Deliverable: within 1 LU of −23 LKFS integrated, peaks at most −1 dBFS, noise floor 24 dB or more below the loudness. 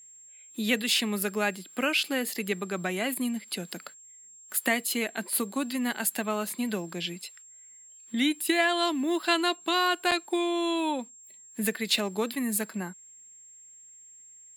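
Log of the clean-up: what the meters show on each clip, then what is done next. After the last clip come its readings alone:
number of dropouts 1; longest dropout 7.2 ms; interfering tone 7,500 Hz; level of the tone −49 dBFS; integrated loudness −28.0 LKFS; sample peak −9.0 dBFS; target loudness −23.0 LKFS
→ repair the gap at 0:10.11, 7.2 ms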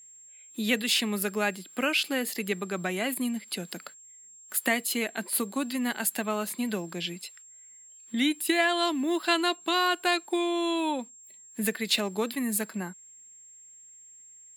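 number of dropouts 0; interfering tone 7,500 Hz; level of the tone −49 dBFS
→ notch filter 7,500 Hz, Q 30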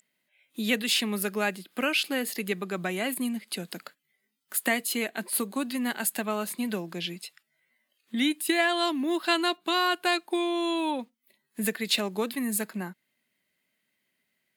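interfering tone none found; integrated loudness −28.5 LKFS; sample peak −9.0 dBFS; target loudness −23.0 LKFS
→ level +5.5 dB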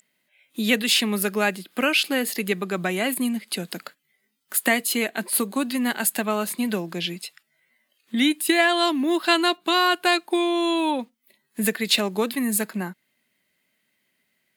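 integrated loudness −23.0 LKFS; sample peak −3.5 dBFS; background noise floor −73 dBFS

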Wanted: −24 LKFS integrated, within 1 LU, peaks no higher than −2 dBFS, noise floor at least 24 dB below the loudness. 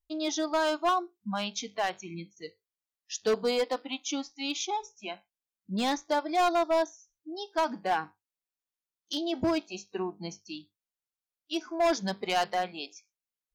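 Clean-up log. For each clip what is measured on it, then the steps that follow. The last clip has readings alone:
share of clipped samples 1.2%; peaks flattened at −21.0 dBFS; integrated loudness −30.5 LKFS; sample peak −21.0 dBFS; target loudness −24.0 LKFS
→ clipped peaks rebuilt −21 dBFS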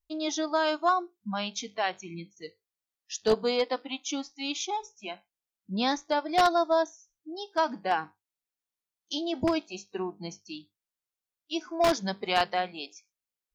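share of clipped samples 0.0%; integrated loudness −29.0 LKFS; sample peak −12.0 dBFS; target loudness −24.0 LKFS
→ level +5 dB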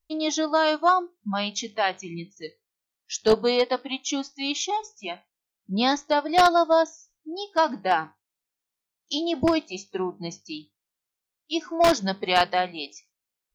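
integrated loudness −24.5 LKFS; sample peak −7.0 dBFS; background noise floor −86 dBFS

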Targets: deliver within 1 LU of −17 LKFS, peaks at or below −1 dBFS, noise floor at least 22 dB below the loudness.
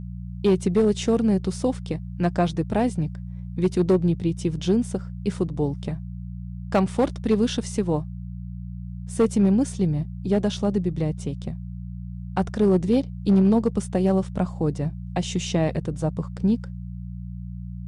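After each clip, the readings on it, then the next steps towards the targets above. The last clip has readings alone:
share of clipped samples 0.5%; peaks flattened at −12.5 dBFS; mains hum 60 Hz; hum harmonics up to 180 Hz; level of the hum −32 dBFS; integrated loudness −24.0 LKFS; sample peak −12.5 dBFS; target loudness −17.0 LKFS
→ clipped peaks rebuilt −12.5 dBFS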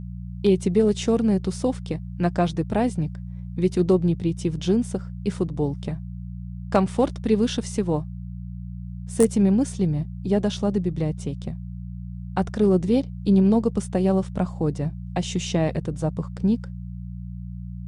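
share of clipped samples 0.0%; mains hum 60 Hz; hum harmonics up to 180 Hz; level of the hum −32 dBFS
→ hum removal 60 Hz, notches 3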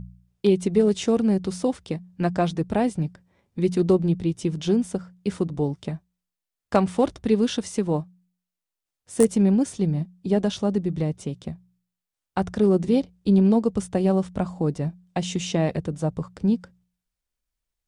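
mains hum none found; integrated loudness −24.0 LKFS; sample peak −3.0 dBFS; target loudness −17.0 LKFS
→ level +7 dB
brickwall limiter −1 dBFS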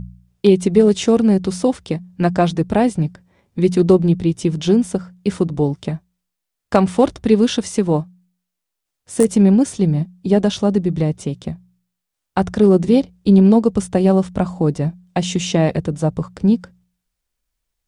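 integrated loudness −17.0 LKFS; sample peak −1.0 dBFS; background noise floor −80 dBFS

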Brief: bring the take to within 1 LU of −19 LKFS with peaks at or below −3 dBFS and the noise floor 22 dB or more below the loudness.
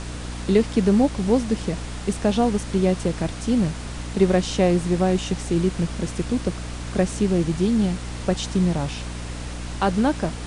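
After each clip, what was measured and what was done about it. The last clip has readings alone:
mains hum 60 Hz; hum harmonics up to 300 Hz; level of the hum −31 dBFS; background noise floor −32 dBFS; target noise floor −45 dBFS; integrated loudness −22.5 LKFS; sample peak −7.0 dBFS; target loudness −19.0 LKFS
→ hum removal 60 Hz, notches 5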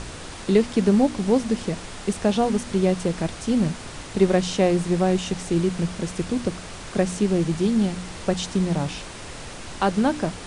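mains hum none found; background noise floor −37 dBFS; target noise floor −45 dBFS
→ noise reduction from a noise print 8 dB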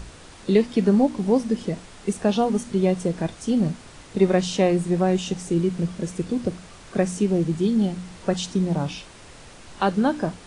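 background noise floor −45 dBFS; target noise floor −46 dBFS
→ noise reduction from a noise print 6 dB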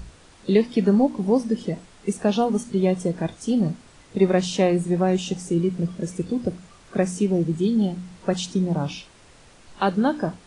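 background noise floor −51 dBFS; integrated loudness −23.5 LKFS; sample peak −6.5 dBFS; target loudness −19.0 LKFS
→ level +4.5 dB
brickwall limiter −3 dBFS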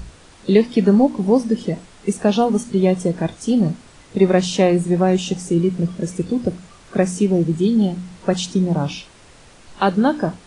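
integrated loudness −19.0 LKFS; sample peak −3.0 dBFS; background noise floor −47 dBFS

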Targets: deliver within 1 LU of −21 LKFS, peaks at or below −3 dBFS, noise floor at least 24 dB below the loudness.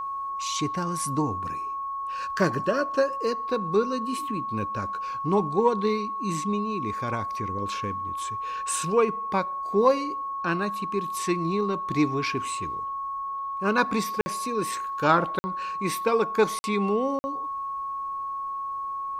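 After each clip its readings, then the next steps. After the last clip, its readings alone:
number of dropouts 4; longest dropout 50 ms; interfering tone 1,100 Hz; level of the tone −29 dBFS; integrated loudness −27.0 LKFS; sample peak −8.0 dBFS; target loudness −21.0 LKFS
→ repair the gap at 0:14.21/0:15.39/0:16.59/0:17.19, 50 ms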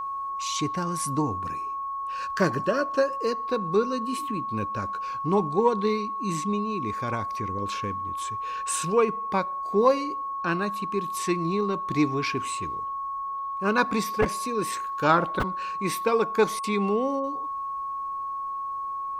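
number of dropouts 0; interfering tone 1,100 Hz; level of the tone −29 dBFS
→ notch filter 1,100 Hz, Q 30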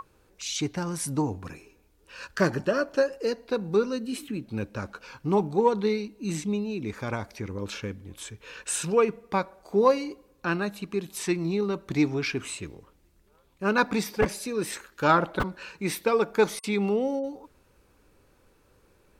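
interfering tone none found; integrated loudness −28.0 LKFS; sample peak −7.5 dBFS; target loudness −21.0 LKFS
→ level +7 dB
brickwall limiter −3 dBFS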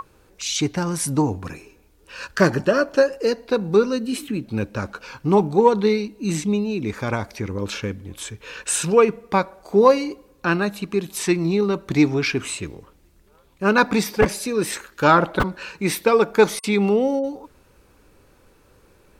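integrated loudness −21.0 LKFS; sample peak −3.0 dBFS; background noise floor −56 dBFS

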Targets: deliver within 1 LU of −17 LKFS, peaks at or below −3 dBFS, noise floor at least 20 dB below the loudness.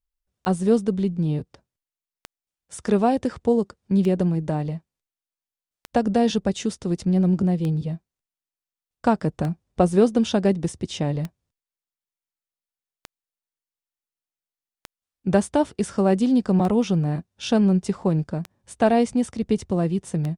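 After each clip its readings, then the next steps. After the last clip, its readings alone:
number of clicks 12; integrated loudness −22.5 LKFS; sample peak −6.0 dBFS; target loudness −17.0 LKFS
→ click removal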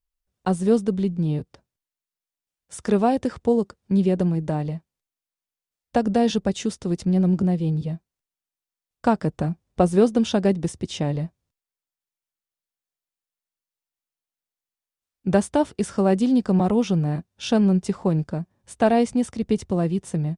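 number of clicks 0; integrated loudness −22.5 LKFS; sample peak −6.0 dBFS; target loudness −17.0 LKFS
→ level +5.5 dB
brickwall limiter −3 dBFS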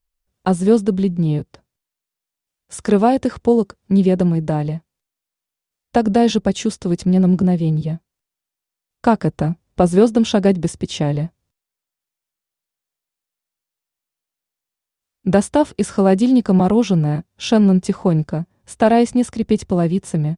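integrated loudness −17.5 LKFS; sample peak −3.0 dBFS; background noise floor −86 dBFS

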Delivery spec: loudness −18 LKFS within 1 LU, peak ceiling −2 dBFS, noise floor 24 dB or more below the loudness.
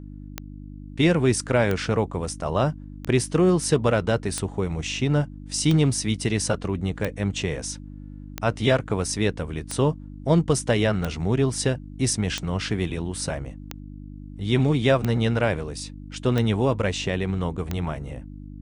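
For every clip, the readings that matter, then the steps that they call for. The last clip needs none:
number of clicks 14; mains hum 50 Hz; hum harmonics up to 300 Hz; level of the hum −37 dBFS; integrated loudness −24.0 LKFS; sample peak −7.0 dBFS; target loudness −18.0 LKFS
→ click removal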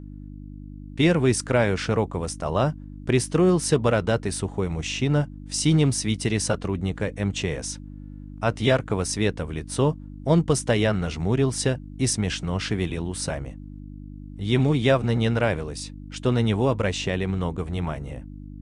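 number of clicks 0; mains hum 50 Hz; hum harmonics up to 300 Hz; level of the hum −37 dBFS
→ hum removal 50 Hz, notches 6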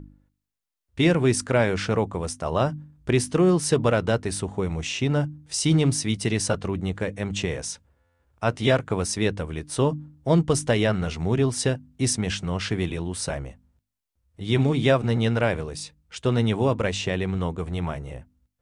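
mains hum none found; integrated loudness −24.5 LKFS; sample peak −7.5 dBFS; target loudness −18.0 LKFS
→ level +6.5 dB
brickwall limiter −2 dBFS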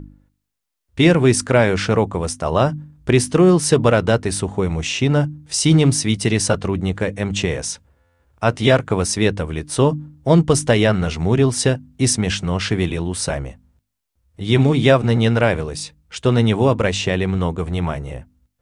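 integrated loudness −18.0 LKFS; sample peak −2.0 dBFS; background noise floor −73 dBFS

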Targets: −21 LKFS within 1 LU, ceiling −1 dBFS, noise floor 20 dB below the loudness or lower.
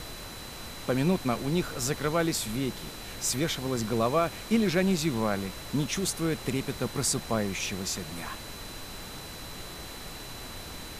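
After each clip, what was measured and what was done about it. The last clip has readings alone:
interfering tone 4,000 Hz; level of the tone −47 dBFS; background noise floor −42 dBFS; target noise floor −51 dBFS; integrated loudness −30.5 LKFS; sample peak −13.0 dBFS; target loudness −21.0 LKFS
→ notch filter 4,000 Hz, Q 30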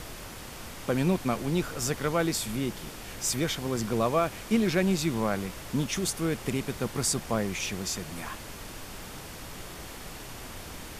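interfering tone none found; background noise floor −43 dBFS; target noise floor −50 dBFS
→ noise reduction from a noise print 7 dB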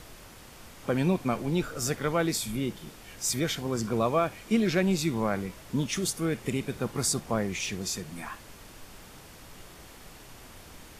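background noise floor −49 dBFS; integrated loudness −29.0 LKFS; sample peak −13.0 dBFS; target loudness −21.0 LKFS
→ level +8 dB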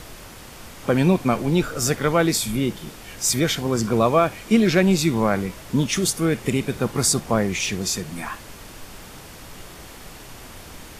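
integrated loudness −21.0 LKFS; sample peak −5.0 dBFS; background noise floor −41 dBFS

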